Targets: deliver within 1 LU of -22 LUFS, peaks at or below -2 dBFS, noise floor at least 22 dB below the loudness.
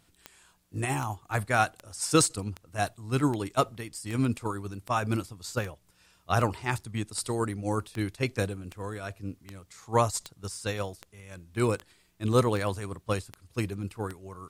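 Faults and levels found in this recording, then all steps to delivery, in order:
clicks found 19; loudness -30.5 LUFS; peak level -9.0 dBFS; loudness target -22.0 LUFS
-> de-click; trim +8.5 dB; peak limiter -2 dBFS

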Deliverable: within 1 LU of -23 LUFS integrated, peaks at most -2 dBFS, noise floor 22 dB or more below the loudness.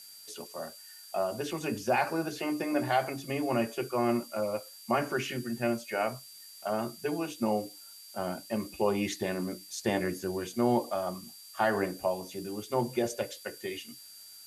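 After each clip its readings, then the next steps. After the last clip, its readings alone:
steady tone 4.7 kHz; tone level -51 dBFS; noise floor -50 dBFS; noise floor target -55 dBFS; loudness -32.5 LUFS; peak level -14.5 dBFS; loudness target -23.0 LUFS
-> band-stop 4.7 kHz, Q 30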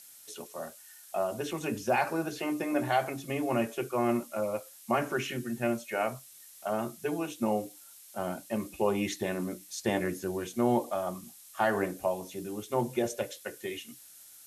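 steady tone not found; noise floor -53 dBFS; noise floor target -55 dBFS
-> noise print and reduce 6 dB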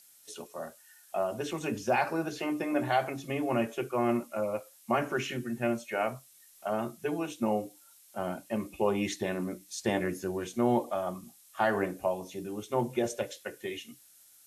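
noise floor -59 dBFS; loudness -32.5 LUFS; peak level -14.5 dBFS; loudness target -23.0 LUFS
-> trim +9.5 dB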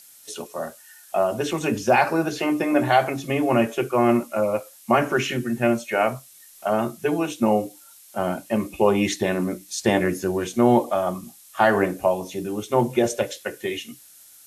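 loudness -23.0 LUFS; peak level -5.0 dBFS; noise floor -49 dBFS

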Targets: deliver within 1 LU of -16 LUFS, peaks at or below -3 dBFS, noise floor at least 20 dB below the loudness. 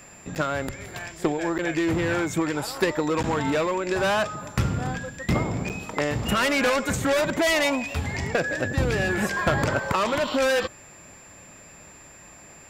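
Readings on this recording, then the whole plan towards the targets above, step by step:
dropouts 4; longest dropout 8.4 ms; steady tone 7.3 kHz; tone level -48 dBFS; loudness -25.0 LUFS; peak level -10.5 dBFS; loudness target -16.0 LUFS
-> interpolate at 0.35/1.58/3.23/5.69 s, 8.4 ms; band-stop 7.3 kHz, Q 30; trim +9 dB; peak limiter -3 dBFS

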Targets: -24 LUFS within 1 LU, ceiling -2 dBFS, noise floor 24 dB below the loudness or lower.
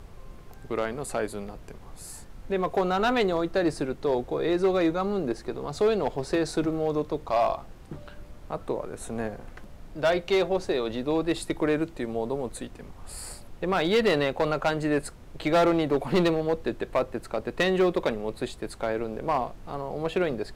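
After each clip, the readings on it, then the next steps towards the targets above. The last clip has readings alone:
clipped samples 0.9%; clipping level -17.0 dBFS; noise floor -46 dBFS; noise floor target -52 dBFS; loudness -27.5 LUFS; peak level -17.0 dBFS; loudness target -24.0 LUFS
-> clip repair -17 dBFS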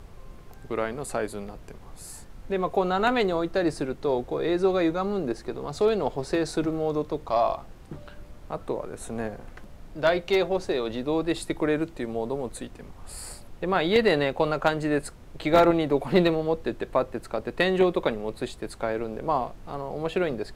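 clipped samples 0.0%; noise floor -46 dBFS; noise floor target -51 dBFS
-> noise print and reduce 6 dB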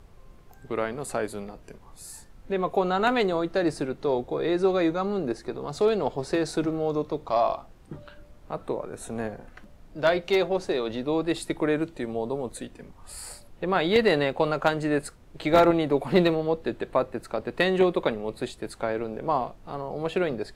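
noise floor -51 dBFS; loudness -26.5 LUFS; peak level -8.0 dBFS; loudness target -24.0 LUFS
-> trim +2.5 dB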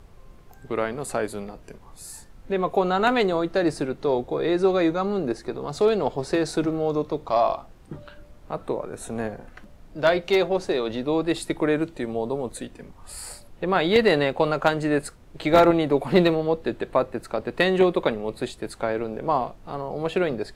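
loudness -24.0 LUFS; peak level -5.5 dBFS; noise floor -49 dBFS

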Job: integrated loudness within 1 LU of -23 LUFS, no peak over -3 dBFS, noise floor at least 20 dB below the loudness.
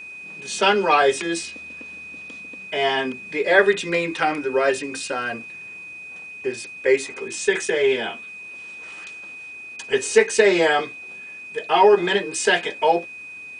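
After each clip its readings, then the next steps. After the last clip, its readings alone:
steady tone 2.5 kHz; tone level -35 dBFS; loudness -20.5 LUFS; peak level -2.5 dBFS; loudness target -23.0 LUFS
-> band-stop 2.5 kHz, Q 30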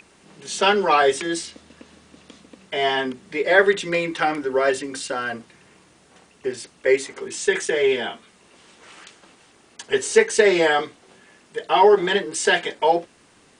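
steady tone not found; loudness -20.5 LUFS; peak level -2.5 dBFS; loudness target -23.0 LUFS
-> trim -2.5 dB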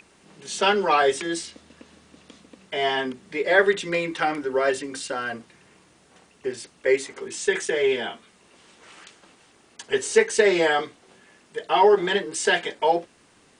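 loudness -23.0 LUFS; peak level -5.0 dBFS; noise floor -58 dBFS

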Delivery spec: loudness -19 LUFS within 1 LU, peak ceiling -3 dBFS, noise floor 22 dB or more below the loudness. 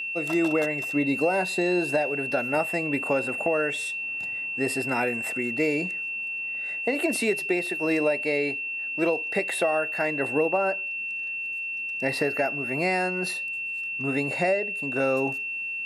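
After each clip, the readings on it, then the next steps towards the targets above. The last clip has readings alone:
steady tone 2.7 kHz; tone level -29 dBFS; loudness -26.0 LUFS; peak level -12.0 dBFS; loudness target -19.0 LUFS
-> band-stop 2.7 kHz, Q 30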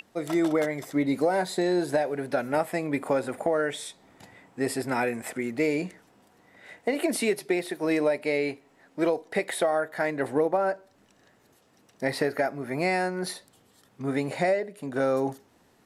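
steady tone not found; loudness -27.5 LUFS; peak level -13.0 dBFS; loudness target -19.0 LUFS
-> trim +8.5 dB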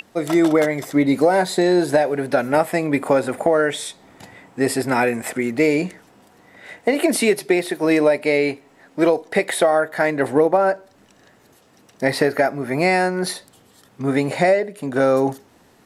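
loudness -19.0 LUFS; peak level -4.5 dBFS; noise floor -54 dBFS

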